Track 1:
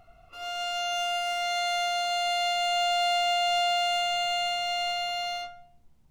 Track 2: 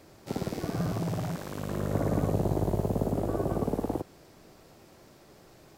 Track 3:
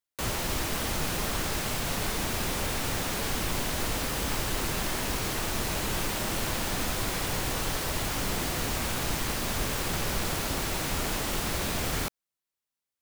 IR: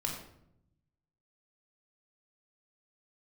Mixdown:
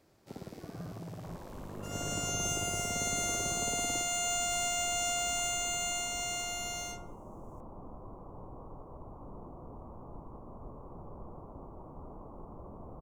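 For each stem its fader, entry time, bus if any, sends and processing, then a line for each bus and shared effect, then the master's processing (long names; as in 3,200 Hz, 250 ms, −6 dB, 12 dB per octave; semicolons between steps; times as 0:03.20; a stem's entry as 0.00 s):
−4.5 dB, 1.50 s, no send, high-pass filter 970 Hz; high shelf with overshoot 5,300 Hz +9.5 dB, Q 3
−12.5 dB, 0.00 s, no send, no processing
−14.0 dB, 1.05 s, no send, elliptic low-pass filter 1,100 Hz, stop band 40 dB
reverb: not used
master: no processing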